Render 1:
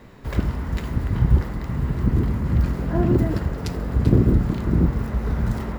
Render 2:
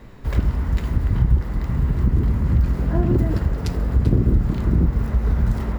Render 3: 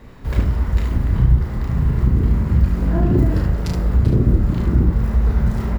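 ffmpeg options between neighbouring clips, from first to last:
ffmpeg -i in.wav -af "lowshelf=frequency=71:gain=11,acompressor=threshold=-14dB:ratio=2.5" out.wav
ffmpeg -i in.wav -af "aecho=1:1:33|73:0.631|0.531" out.wav

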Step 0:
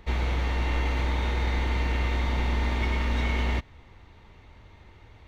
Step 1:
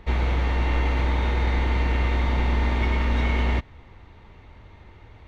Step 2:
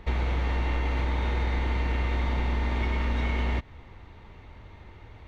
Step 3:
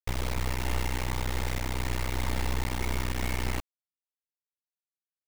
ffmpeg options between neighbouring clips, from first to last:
ffmpeg -i in.wav -af "highshelf=frequency=4300:gain=-9,volume=4dB" out.wav
ffmpeg -i in.wav -af "acompressor=threshold=-23dB:ratio=6" out.wav
ffmpeg -i in.wav -af "acrusher=bits=3:dc=4:mix=0:aa=0.000001" out.wav

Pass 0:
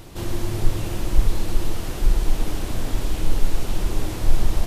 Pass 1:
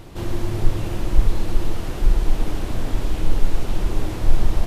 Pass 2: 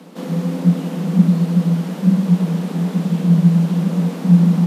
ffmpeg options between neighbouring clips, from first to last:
ffmpeg -i in.wav -af "highshelf=frequency=4100:gain=-8,volume=1.5dB" out.wav
ffmpeg -i in.wav -af "afreqshift=160,volume=-1dB" out.wav

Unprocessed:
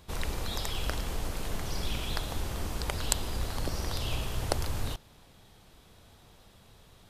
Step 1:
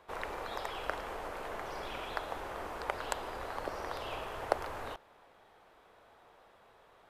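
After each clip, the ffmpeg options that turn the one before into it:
ffmpeg -i in.wav -filter_complex "[0:a]acrossover=split=400 2100:gain=0.0794 1 0.112[link_01][link_02][link_03];[link_01][link_02][link_03]amix=inputs=3:normalize=0,volume=3.5dB" out.wav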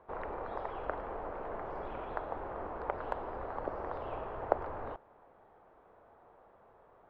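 ffmpeg -i in.wav -af "lowpass=1100,volume=2dB" out.wav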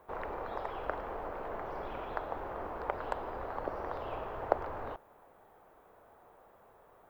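ffmpeg -i in.wav -af "aemphasis=mode=production:type=75fm,volume=1dB" out.wav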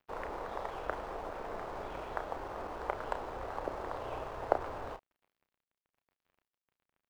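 ffmpeg -i in.wav -filter_complex "[0:a]aeval=exprs='sgn(val(0))*max(abs(val(0))-0.00237,0)':channel_layout=same,asplit=2[link_01][link_02];[link_02]adelay=32,volume=-9dB[link_03];[link_01][link_03]amix=inputs=2:normalize=0" out.wav

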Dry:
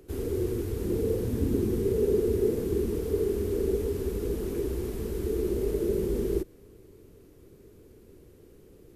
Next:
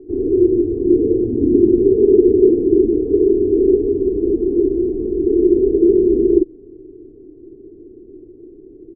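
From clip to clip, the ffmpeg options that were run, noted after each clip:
ffmpeg -i in.wav -af "lowpass=frequency=340:width_type=q:width=3.7,equalizer=frequency=66:width_type=o:width=0.82:gain=-10,aecho=1:1:2.8:0.51,volume=5dB" out.wav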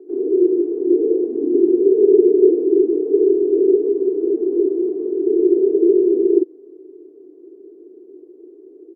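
ffmpeg -i in.wav -af "highpass=frequency=370:width=0.5412,highpass=frequency=370:width=1.3066,volume=2dB" out.wav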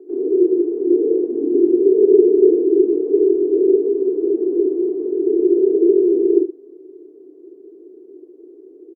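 ffmpeg -i in.wav -af "aecho=1:1:72:0.266" out.wav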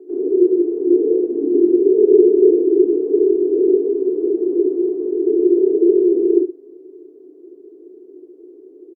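ffmpeg -i in.wav -filter_complex "[0:a]asplit=2[link_01][link_02];[link_02]adelay=14,volume=-11dB[link_03];[link_01][link_03]amix=inputs=2:normalize=0" out.wav

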